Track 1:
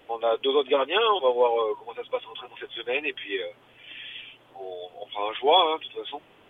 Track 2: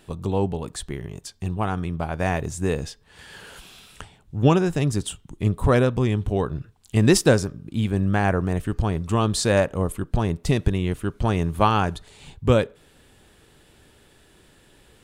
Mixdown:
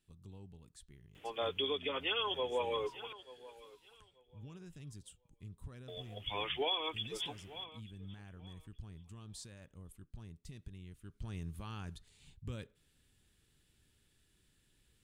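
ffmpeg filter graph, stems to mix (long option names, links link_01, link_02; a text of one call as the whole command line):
ffmpeg -i stem1.wav -i stem2.wav -filter_complex "[0:a]adelay=1150,volume=1dB,asplit=3[link_01][link_02][link_03];[link_01]atrim=end=3.13,asetpts=PTS-STARTPTS,afade=type=out:start_time=3.126:duration=0.004:curve=hsin[link_04];[link_02]atrim=start=3.13:end=5.88,asetpts=PTS-STARTPTS,volume=0[link_05];[link_03]atrim=start=5.88,asetpts=PTS-STARTPTS,afade=type=in:duration=0.004:curve=hsin[link_06];[link_04][link_05][link_06]concat=n=3:v=0:a=1,asplit=2[link_07][link_08];[link_08]volume=-21.5dB[link_09];[1:a]alimiter=limit=-13dB:level=0:latency=1:release=69,volume=-14.5dB,afade=type=in:start_time=11:duration=0.37:silence=0.375837[link_10];[link_09]aecho=0:1:884|1768|2652:1|0.2|0.04[link_11];[link_07][link_10][link_11]amix=inputs=3:normalize=0,equalizer=frequency=680:width_type=o:width=2.4:gain=-14.5,alimiter=level_in=1.5dB:limit=-24dB:level=0:latency=1:release=229,volume=-1.5dB" out.wav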